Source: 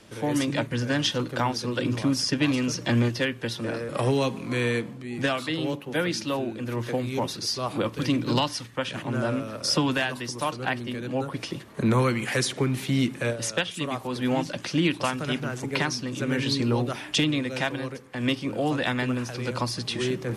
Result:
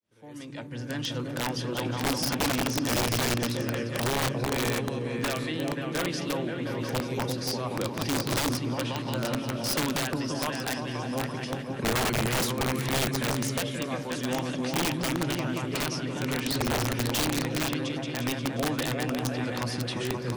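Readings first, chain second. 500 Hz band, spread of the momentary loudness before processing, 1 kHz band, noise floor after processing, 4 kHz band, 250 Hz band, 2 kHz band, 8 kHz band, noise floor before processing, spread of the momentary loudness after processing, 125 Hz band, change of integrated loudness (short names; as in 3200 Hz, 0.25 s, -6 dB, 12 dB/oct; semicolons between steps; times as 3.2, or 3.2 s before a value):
-2.5 dB, 6 LU, -1.0 dB, -36 dBFS, -2.0 dB, -3.5 dB, -2.5 dB, +2.0 dB, -41 dBFS, 5 LU, -2.5 dB, -2.0 dB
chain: opening faded in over 1.49 s; repeats that get brighter 0.177 s, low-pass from 200 Hz, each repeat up 2 oct, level 0 dB; wrapped overs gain 15.5 dB; gain -5 dB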